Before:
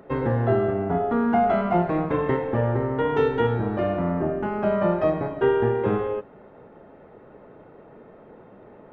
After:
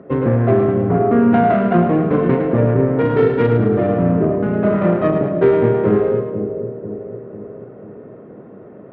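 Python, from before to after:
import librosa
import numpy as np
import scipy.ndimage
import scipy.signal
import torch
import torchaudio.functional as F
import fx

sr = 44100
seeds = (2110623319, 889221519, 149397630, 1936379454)

p1 = fx.self_delay(x, sr, depth_ms=0.29)
p2 = fx.bandpass_edges(p1, sr, low_hz=150.0, high_hz=3100.0)
p3 = fx.tilt_eq(p2, sr, slope=-3.0)
p4 = fx.notch(p3, sr, hz=860.0, q=5.6)
p5 = p4 + fx.echo_split(p4, sr, split_hz=600.0, low_ms=492, high_ms=107, feedback_pct=52, wet_db=-7, dry=0)
y = F.gain(torch.from_numpy(p5), 4.0).numpy()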